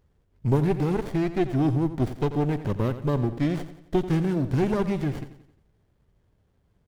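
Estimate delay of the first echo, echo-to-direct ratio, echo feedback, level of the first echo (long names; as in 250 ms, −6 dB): 88 ms, −12.0 dB, 47%, −13.0 dB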